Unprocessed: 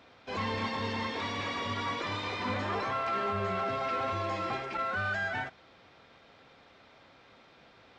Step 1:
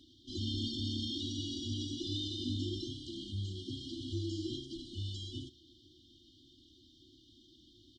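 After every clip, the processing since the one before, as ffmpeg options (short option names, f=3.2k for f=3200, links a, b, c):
-af "afftfilt=real='re*(1-between(b*sr/4096,370,2900))':imag='im*(1-between(b*sr/4096,370,2900))':win_size=4096:overlap=0.75,aecho=1:1:2.8:0.84"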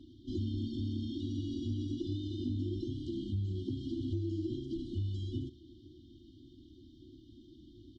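-af "acompressor=threshold=-41dB:ratio=6,tiltshelf=f=1.4k:g=10"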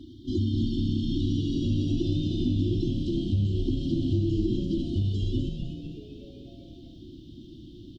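-filter_complex "[0:a]asplit=7[a][b][c][d][e][f][g];[b]adelay=250,afreqshift=-130,volume=-6dB[h];[c]adelay=500,afreqshift=-260,volume=-12.4dB[i];[d]adelay=750,afreqshift=-390,volume=-18.8dB[j];[e]adelay=1000,afreqshift=-520,volume=-25.1dB[k];[f]adelay=1250,afreqshift=-650,volume=-31.5dB[l];[g]adelay=1500,afreqshift=-780,volume=-37.9dB[m];[a][h][i][j][k][l][m]amix=inputs=7:normalize=0,volume=9dB"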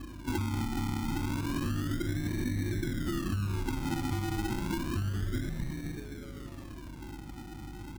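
-af "acompressor=threshold=-29dB:ratio=6,acrusher=samples=31:mix=1:aa=0.000001:lfo=1:lforange=18.6:lforate=0.3,aeval=exprs='val(0)+0.00501*(sin(2*PI*50*n/s)+sin(2*PI*2*50*n/s)/2+sin(2*PI*3*50*n/s)/3+sin(2*PI*4*50*n/s)/4+sin(2*PI*5*50*n/s)/5)':c=same"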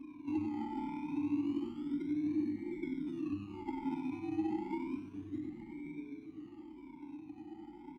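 -filter_complex "[0:a]afftfilt=real='re*pow(10,15/40*sin(2*PI*(1.6*log(max(b,1)*sr/1024/100)/log(2)-(1)*(pts-256)/sr)))':imag='im*pow(10,15/40*sin(2*PI*(1.6*log(max(b,1)*sr/1024/100)/log(2)-(1)*(pts-256)/sr)))':win_size=1024:overlap=0.75,asplit=3[a][b][c];[a]bandpass=f=300:t=q:w=8,volume=0dB[d];[b]bandpass=f=870:t=q:w=8,volume=-6dB[e];[c]bandpass=f=2.24k:t=q:w=8,volume=-9dB[f];[d][e][f]amix=inputs=3:normalize=0,aecho=1:1:95:0.376,volume=1dB"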